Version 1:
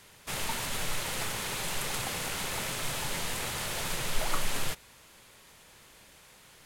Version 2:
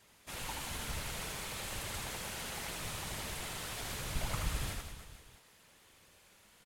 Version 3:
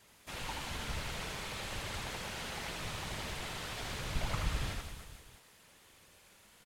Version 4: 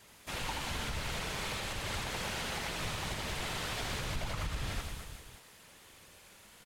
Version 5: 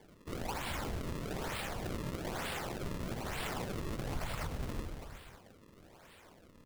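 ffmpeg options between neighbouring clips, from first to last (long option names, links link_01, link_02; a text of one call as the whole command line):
ffmpeg -i in.wav -af "afftfilt=real='hypot(re,im)*cos(2*PI*random(0))':imag='hypot(re,im)*sin(2*PI*random(1))':win_size=512:overlap=0.75,aecho=1:1:80|180|305|461.2|656.6:0.631|0.398|0.251|0.158|0.1,volume=-3.5dB" out.wav
ffmpeg -i in.wav -filter_complex "[0:a]acrossover=split=6100[link_01][link_02];[link_02]acompressor=threshold=-56dB:ratio=4:attack=1:release=60[link_03];[link_01][link_03]amix=inputs=2:normalize=0,volume=1.5dB" out.wav
ffmpeg -i in.wav -af "alimiter=level_in=7dB:limit=-24dB:level=0:latency=1:release=160,volume=-7dB,volume=4.5dB" out.wav
ffmpeg -i in.wav -af "acrusher=samples=33:mix=1:aa=0.000001:lfo=1:lforange=52.8:lforate=1.1,bandreject=frequency=50:width_type=h:width=6,bandreject=frequency=100:width_type=h:width=6,volume=-1dB" out.wav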